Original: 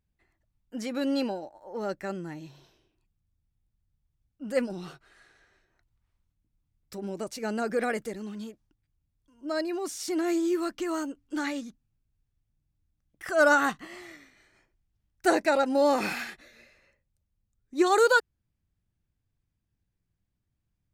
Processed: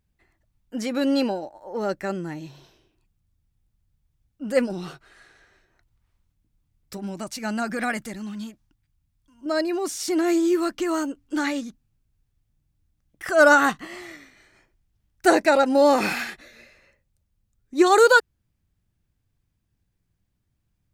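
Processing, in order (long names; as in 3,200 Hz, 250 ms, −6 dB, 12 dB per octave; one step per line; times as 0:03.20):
0:06.97–0:09.46: parametric band 450 Hz −13.5 dB 0.61 octaves
level +6 dB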